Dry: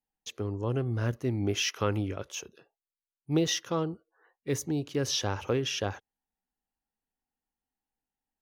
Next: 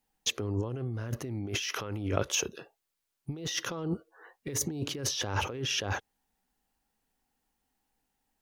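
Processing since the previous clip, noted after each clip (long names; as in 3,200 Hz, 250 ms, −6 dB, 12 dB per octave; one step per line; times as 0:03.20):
compressor whose output falls as the input rises −38 dBFS, ratio −1
level +4.5 dB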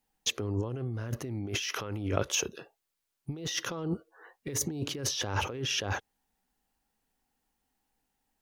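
no processing that can be heard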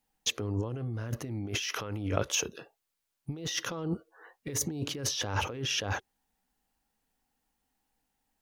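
notch filter 380 Hz, Q 12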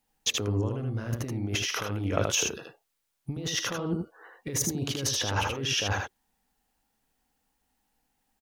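single-tap delay 78 ms −4 dB
level +2.5 dB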